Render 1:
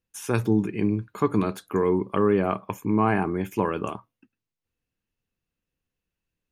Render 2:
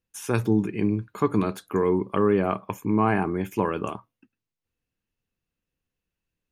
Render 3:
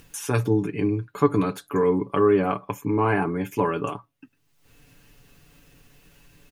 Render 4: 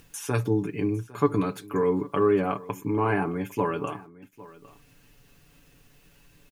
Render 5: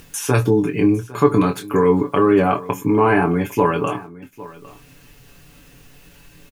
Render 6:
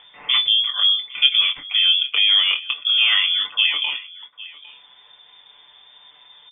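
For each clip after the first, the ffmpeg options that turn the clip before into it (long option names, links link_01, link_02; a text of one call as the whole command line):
ffmpeg -i in.wav -af anull out.wav
ffmpeg -i in.wav -af "aecho=1:1:7:0.67,acompressor=mode=upward:threshold=-30dB:ratio=2.5" out.wav
ffmpeg -i in.wav -af "acrusher=bits=10:mix=0:aa=0.000001,aecho=1:1:805:0.1,volume=-3dB" out.wav
ffmpeg -i in.wav -filter_complex "[0:a]asplit=2[link_01][link_02];[link_02]alimiter=limit=-16.5dB:level=0:latency=1,volume=0.5dB[link_03];[link_01][link_03]amix=inputs=2:normalize=0,asplit=2[link_04][link_05];[link_05]adelay=23,volume=-7dB[link_06];[link_04][link_06]amix=inputs=2:normalize=0,volume=3.5dB" out.wav
ffmpeg -i in.wav -af "lowpass=frequency=3100:width_type=q:width=0.5098,lowpass=frequency=3100:width_type=q:width=0.6013,lowpass=frequency=3100:width_type=q:width=0.9,lowpass=frequency=3100:width_type=q:width=2.563,afreqshift=-3600,volume=-2dB" out.wav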